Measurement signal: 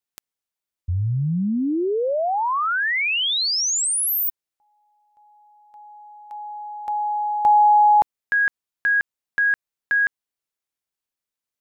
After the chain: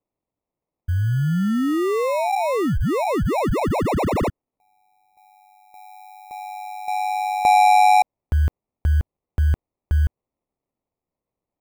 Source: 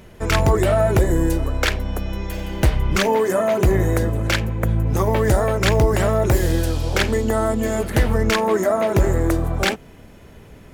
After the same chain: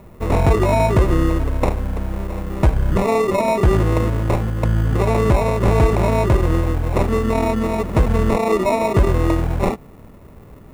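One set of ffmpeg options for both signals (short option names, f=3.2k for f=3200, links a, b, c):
-filter_complex "[0:a]acrusher=samples=28:mix=1:aa=0.000001,acrossover=split=9200[a][b];[b]acompressor=threshold=-47dB:ratio=4:attack=1:release=60[c];[a][c]amix=inputs=2:normalize=0,equalizer=f=4.8k:w=0.65:g=-12.5,volume=2dB"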